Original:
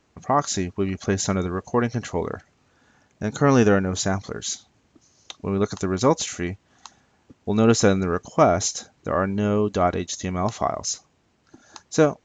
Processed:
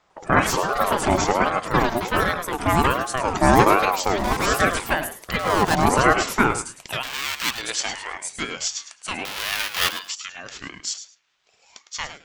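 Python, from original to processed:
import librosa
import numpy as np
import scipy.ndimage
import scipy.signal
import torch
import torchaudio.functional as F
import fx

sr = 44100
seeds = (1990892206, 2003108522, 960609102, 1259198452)

p1 = fx.halfwave_hold(x, sr, at=(9.25, 9.89))
p2 = fx.peak_eq(p1, sr, hz=7700.0, db=-10.5, octaves=0.22)
p3 = fx.echo_pitch(p2, sr, ms=100, semitones=5, count=3, db_per_echo=-3.0)
p4 = fx.filter_sweep_highpass(p3, sr, from_hz=67.0, to_hz=2100.0, start_s=6.01, end_s=6.94, q=1.6)
p5 = p4 + fx.echo_feedback(p4, sr, ms=106, feedback_pct=16, wet_db=-11, dry=0)
p6 = fx.ring_lfo(p5, sr, carrier_hz=710.0, swing_pct=35, hz=1.3)
y = p6 * 10.0 ** (3.0 / 20.0)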